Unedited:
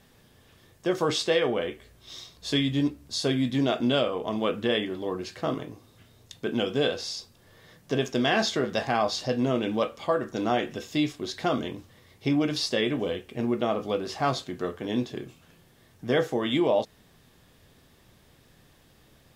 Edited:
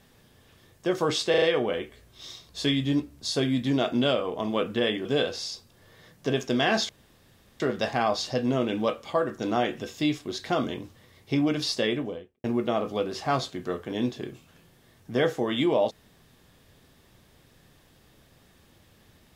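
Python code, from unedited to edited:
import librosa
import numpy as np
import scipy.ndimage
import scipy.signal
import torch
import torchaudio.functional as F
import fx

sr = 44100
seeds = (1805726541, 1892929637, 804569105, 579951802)

y = fx.studio_fade_out(x, sr, start_s=12.75, length_s=0.63)
y = fx.edit(y, sr, fx.stutter(start_s=1.3, slice_s=0.04, count=4),
    fx.cut(start_s=4.93, length_s=1.77),
    fx.insert_room_tone(at_s=8.54, length_s=0.71), tone=tone)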